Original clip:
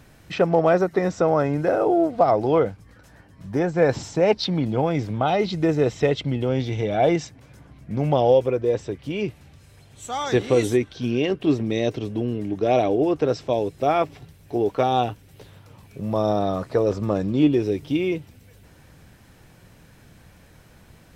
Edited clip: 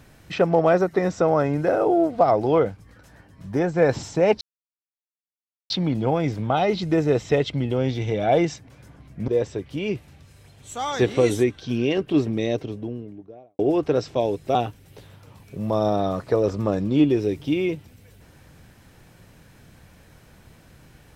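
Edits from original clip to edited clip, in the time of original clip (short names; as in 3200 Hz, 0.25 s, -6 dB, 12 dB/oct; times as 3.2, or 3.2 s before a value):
4.41 insert silence 1.29 s
7.99–8.61 cut
11.54–12.92 studio fade out
13.88–14.98 cut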